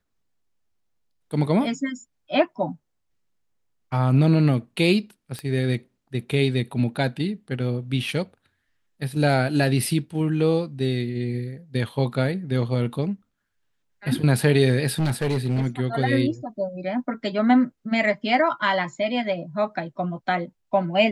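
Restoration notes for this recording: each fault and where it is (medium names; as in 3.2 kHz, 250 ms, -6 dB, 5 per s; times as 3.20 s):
5.39 s: pop -17 dBFS
14.99–15.66 s: clipped -18.5 dBFS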